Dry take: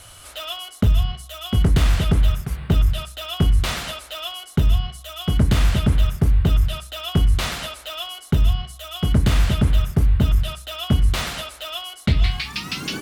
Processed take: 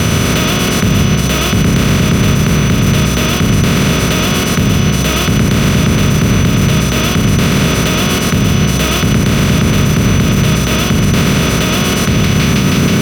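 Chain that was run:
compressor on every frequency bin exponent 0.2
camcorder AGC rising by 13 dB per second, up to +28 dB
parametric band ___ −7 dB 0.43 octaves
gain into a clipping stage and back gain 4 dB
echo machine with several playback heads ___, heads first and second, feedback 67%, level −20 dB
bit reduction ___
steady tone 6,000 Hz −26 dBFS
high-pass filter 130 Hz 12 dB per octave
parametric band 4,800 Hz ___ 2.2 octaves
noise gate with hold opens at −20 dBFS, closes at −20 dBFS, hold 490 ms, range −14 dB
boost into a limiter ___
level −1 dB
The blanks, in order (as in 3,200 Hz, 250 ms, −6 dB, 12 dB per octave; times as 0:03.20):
780 Hz, 241 ms, 8 bits, −8 dB, +11.5 dB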